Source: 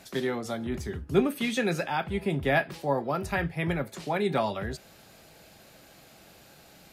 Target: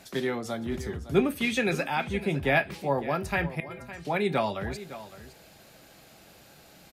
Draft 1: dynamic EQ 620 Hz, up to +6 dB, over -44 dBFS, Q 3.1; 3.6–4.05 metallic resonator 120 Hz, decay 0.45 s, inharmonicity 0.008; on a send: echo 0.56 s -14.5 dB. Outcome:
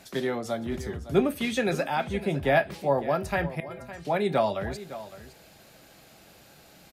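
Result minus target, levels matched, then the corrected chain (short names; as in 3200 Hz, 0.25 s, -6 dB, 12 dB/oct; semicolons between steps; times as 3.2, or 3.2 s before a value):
2000 Hz band -3.0 dB
dynamic EQ 2400 Hz, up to +6 dB, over -44 dBFS, Q 3.1; 3.6–4.05 metallic resonator 120 Hz, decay 0.45 s, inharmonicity 0.008; on a send: echo 0.56 s -14.5 dB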